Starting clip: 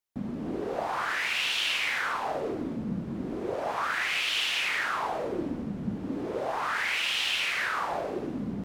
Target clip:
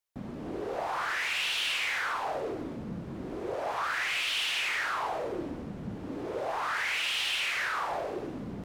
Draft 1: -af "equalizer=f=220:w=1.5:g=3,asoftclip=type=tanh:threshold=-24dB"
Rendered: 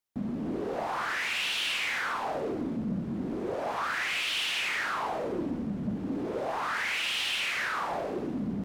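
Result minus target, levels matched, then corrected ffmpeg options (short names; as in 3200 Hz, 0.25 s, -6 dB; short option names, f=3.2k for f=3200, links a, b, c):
250 Hz band +6.0 dB
-af "equalizer=f=220:w=1.5:g=-7.5,asoftclip=type=tanh:threshold=-24dB"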